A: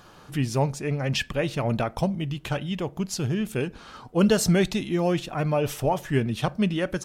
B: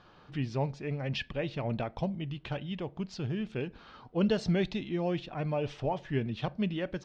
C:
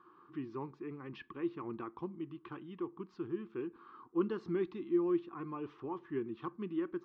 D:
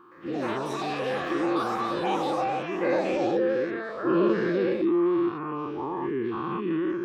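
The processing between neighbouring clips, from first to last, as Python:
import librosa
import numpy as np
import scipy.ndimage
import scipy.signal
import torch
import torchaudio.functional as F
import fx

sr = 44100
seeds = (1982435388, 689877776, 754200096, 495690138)

y1 = scipy.signal.sosfilt(scipy.signal.butter(4, 4500.0, 'lowpass', fs=sr, output='sos'), x)
y1 = fx.dynamic_eq(y1, sr, hz=1300.0, q=2.5, threshold_db=-44.0, ratio=4.0, max_db=-5)
y1 = y1 * librosa.db_to_amplitude(-7.5)
y2 = fx.double_bandpass(y1, sr, hz=620.0, octaves=1.7)
y2 = y2 * librosa.db_to_amplitude(5.0)
y3 = fx.spec_dilate(y2, sr, span_ms=240)
y3 = fx.echo_pitch(y3, sr, ms=116, semitones=7, count=3, db_per_echo=-3.0)
y3 = y3 * librosa.db_to_amplitude(3.5)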